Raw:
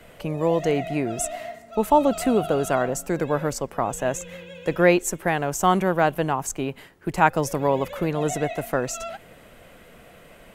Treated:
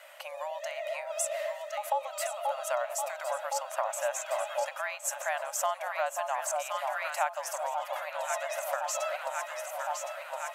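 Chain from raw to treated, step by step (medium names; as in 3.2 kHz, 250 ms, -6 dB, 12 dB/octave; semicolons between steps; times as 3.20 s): on a send: echo whose repeats swap between lows and highs 532 ms, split 1.1 kHz, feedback 78%, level -6.5 dB; on the sum: compression 12:1, threshold -24 dBFS, peak gain reduction 14 dB; frequency shift -46 Hz; brick-wall FIR high-pass 540 Hz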